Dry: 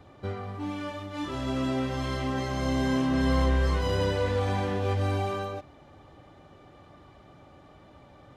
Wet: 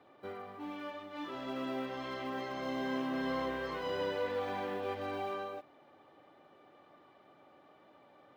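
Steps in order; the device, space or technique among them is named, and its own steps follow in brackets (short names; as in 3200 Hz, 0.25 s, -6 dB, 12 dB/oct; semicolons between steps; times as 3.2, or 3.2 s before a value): early digital voice recorder (BPF 300–3700 Hz; block floating point 7-bit); gain -6 dB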